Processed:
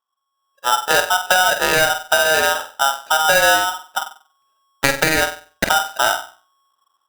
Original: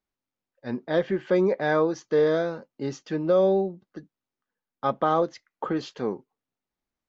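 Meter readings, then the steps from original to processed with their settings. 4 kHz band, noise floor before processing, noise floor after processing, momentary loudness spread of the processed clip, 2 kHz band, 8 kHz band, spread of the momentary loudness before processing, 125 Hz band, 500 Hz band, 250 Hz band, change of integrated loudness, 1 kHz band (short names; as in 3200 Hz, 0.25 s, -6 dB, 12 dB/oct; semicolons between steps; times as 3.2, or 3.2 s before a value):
+24.0 dB, under -85 dBFS, -75 dBFS, 11 LU, +20.5 dB, n/a, 13 LU, 0.0 dB, +1.5 dB, -4.0 dB, +8.5 dB, +13.0 dB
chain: Wiener smoothing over 41 samples; AGC gain up to 13 dB; high shelf 3600 Hz +10 dB; in parallel at -3.5 dB: crossover distortion -32 dBFS; on the sum: compressor 6:1, threshold -18 dBFS, peak gain reduction 14.5 dB; low shelf 65 Hz +9 dB; on a send: flutter echo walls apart 8.1 m, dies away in 0.39 s; on the sum: polarity switched at an audio rate 1100 Hz; gain +3.5 dB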